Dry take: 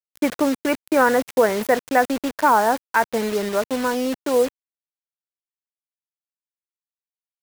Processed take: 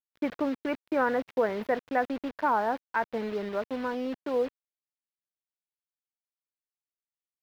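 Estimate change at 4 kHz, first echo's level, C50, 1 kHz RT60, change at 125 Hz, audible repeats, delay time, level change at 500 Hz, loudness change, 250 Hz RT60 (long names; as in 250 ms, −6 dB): −14.0 dB, no echo audible, no reverb audible, no reverb audible, can't be measured, no echo audible, no echo audible, −9.5 dB, −9.5 dB, no reverb audible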